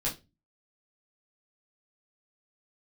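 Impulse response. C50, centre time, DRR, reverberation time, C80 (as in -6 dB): 12.5 dB, 21 ms, -5.5 dB, 0.25 s, 20.5 dB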